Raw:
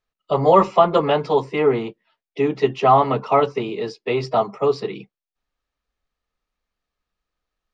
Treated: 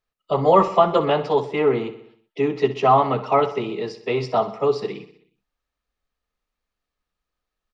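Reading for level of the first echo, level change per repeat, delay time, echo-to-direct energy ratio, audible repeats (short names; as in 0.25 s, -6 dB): -14.0 dB, -4.5 dB, 63 ms, -12.0 dB, 5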